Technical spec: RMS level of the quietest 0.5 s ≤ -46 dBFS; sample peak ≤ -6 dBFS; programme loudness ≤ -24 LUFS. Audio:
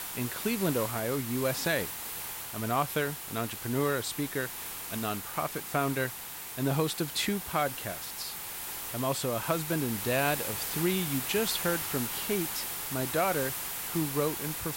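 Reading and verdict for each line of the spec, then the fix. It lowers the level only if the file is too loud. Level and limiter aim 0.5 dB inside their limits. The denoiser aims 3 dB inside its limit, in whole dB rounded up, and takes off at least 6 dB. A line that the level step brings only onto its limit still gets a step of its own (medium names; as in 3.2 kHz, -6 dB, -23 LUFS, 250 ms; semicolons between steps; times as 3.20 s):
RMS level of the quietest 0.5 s -41 dBFS: fail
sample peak -14.0 dBFS: pass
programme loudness -31.0 LUFS: pass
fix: noise reduction 8 dB, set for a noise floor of -41 dBFS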